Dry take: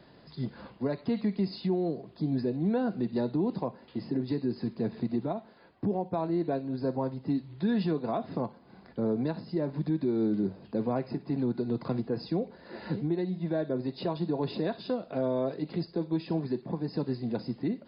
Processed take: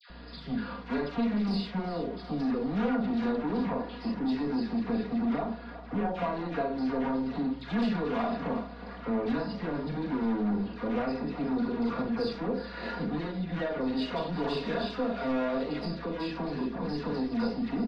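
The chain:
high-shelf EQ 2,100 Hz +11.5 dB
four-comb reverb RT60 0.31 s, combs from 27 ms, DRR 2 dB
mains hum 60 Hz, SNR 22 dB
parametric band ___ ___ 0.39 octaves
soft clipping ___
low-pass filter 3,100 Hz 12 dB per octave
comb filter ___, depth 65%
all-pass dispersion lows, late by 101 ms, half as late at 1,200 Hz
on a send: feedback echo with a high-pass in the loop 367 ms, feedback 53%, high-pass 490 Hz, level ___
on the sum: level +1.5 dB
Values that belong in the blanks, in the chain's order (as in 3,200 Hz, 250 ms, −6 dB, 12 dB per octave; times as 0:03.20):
1,300 Hz, +6.5 dB, −30.5 dBFS, 4.2 ms, −12 dB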